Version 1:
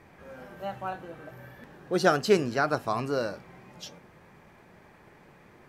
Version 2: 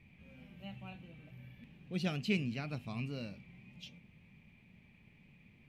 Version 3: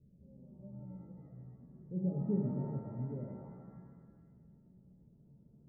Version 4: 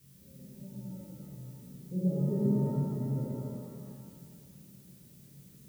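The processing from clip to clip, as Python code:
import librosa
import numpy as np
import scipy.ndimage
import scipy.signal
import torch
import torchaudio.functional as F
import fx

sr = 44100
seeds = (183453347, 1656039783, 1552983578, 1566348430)

y1 = fx.curve_eq(x, sr, hz=(230.0, 340.0, 1600.0, 2400.0, 5500.0), db=(0, -15, -21, 4, -14))
y1 = y1 * librosa.db_to_amplitude(-3.0)
y2 = scipy.signal.sosfilt(scipy.signal.cheby1(6, 3, 610.0, 'lowpass', fs=sr, output='sos'), y1)
y2 = fx.room_flutter(y2, sr, wall_m=8.4, rt60_s=0.26)
y2 = fx.rev_shimmer(y2, sr, seeds[0], rt60_s=1.5, semitones=7, shimmer_db=-8, drr_db=1.5)
y2 = y2 * librosa.db_to_amplitude(-1.5)
y3 = fx.notch_comb(y2, sr, f0_hz=720.0)
y3 = fx.dmg_noise_colour(y3, sr, seeds[1], colour='blue', level_db=-67.0)
y3 = fx.rev_plate(y3, sr, seeds[2], rt60_s=2.1, hf_ratio=0.95, predelay_ms=0, drr_db=-3.5)
y3 = y3 * librosa.db_to_amplitude(1.0)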